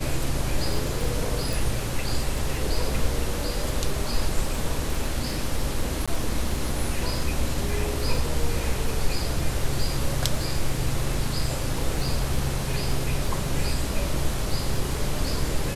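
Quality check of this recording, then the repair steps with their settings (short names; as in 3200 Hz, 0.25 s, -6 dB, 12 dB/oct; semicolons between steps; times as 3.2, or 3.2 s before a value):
crackle 23/s -29 dBFS
1.53 pop
6.06–6.08 gap 16 ms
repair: de-click; interpolate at 6.06, 16 ms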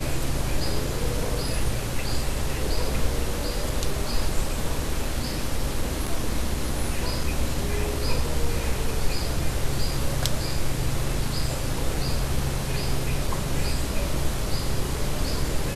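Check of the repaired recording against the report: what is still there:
none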